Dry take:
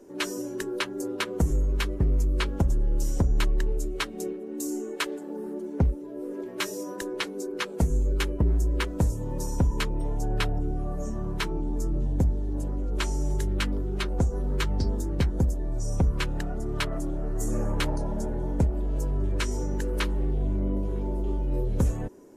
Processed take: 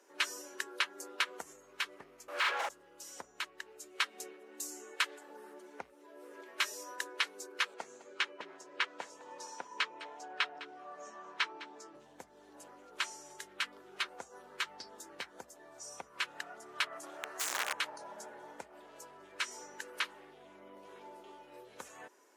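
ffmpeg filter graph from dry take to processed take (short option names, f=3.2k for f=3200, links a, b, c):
-filter_complex "[0:a]asettb=1/sr,asplit=3[a][b][c];[a]atrim=end=2.284[d];[b]atrim=start=2.28:end=2.69,asetpts=PTS-STARTPTS,afade=t=in:d=0.004:c=qsin,afade=t=out:st=0.406:d=0.004:c=qsin,highpass=670,asplit=2[e][f];[f]adelay=43,volume=-2.5dB[g];[e][g]amix=inputs=2:normalize=0,atrim=end_sample=18081,asplit=2[h][i];[i]highpass=f=720:p=1,volume=35dB,asoftclip=type=tanh:threshold=-17.5dB[j];[h][j]amix=inputs=2:normalize=0,lowpass=f=1.5k:p=1,volume=-6dB[k];[c]atrim=start=2.686[l];[d][k]acrossfade=d=0.004:c1=hsin:c2=qsin[m];[m][l]acrossfade=d=0.004:c1=qsin:c2=hsin,asettb=1/sr,asplit=3[n][o][p];[n]atrim=end=7.744[q];[o]atrim=start=7.74:end=11.95,asetpts=PTS-STARTPTS,afade=t=in:d=0.004:c=qsin,afade=t=out:st=4.206:d=0.004:c=qsin,highpass=230,lowpass=5.1k,aecho=1:1:206:0.141,atrim=end_sample=185661[r];[p]atrim=start=11.946[s];[q][r]acrossfade=d=0.004:c1=hsin:c2=qsin[t];[t][s]acrossfade=d=0.004:c1=qsin:c2=hsin,asettb=1/sr,asplit=3[u][v][w];[u]atrim=end=17.034[x];[v]atrim=start=17.03:end=17.73,asetpts=PTS-STARTPTS,afade=t=in:d=0.004:c=qsin,afade=t=out:st=0.696:d=0.004:c=qsin,lowshelf=f=240:g=-12,acontrast=42,aeval=exprs='(mod(12.6*val(0)+1,2)-1)/12.6':c=same[y];[w]atrim=start=17.726[z];[x][y]acrossfade=d=0.004:c1=hsin:c2=qsin[aa];[aa][z]acrossfade=d=0.004:c1=qsin:c2=hsin,acompressor=threshold=-26dB:ratio=6,highpass=1.3k,highshelf=f=6k:g=-10,volume=3dB"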